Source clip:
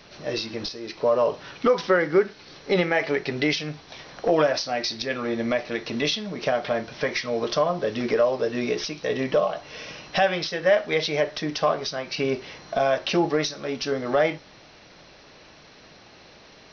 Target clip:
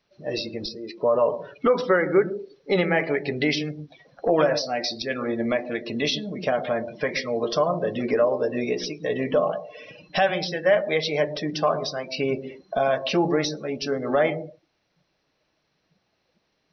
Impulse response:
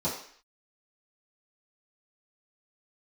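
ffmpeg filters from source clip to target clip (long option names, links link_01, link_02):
-filter_complex "[0:a]asplit=2[link_01][link_02];[1:a]atrim=start_sample=2205,lowshelf=frequency=450:gain=7,adelay=108[link_03];[link_02][link_03]afir=irnorm=-1:irlink=0,volume=-26dB[link_04];[link_01][link_04]amix=inputs=2:normalize=0,afftdn=noise_reduction=23:noise_floor=-35"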